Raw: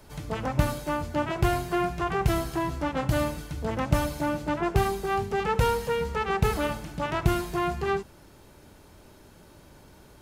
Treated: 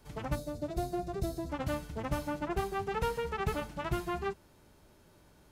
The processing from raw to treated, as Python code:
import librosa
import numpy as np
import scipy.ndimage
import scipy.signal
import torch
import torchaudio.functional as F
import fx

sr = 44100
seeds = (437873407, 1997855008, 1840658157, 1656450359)

y = fx.spec_box(x, sr, start_s=0.66, length_s=2.11, low_hz=740.0, high_hz=3500.0, gain_db=-13)
y = fx.stretch_vocoder(y, sr, factor=0.54)
y = y * librosa.db_to_amplitude(-7.0)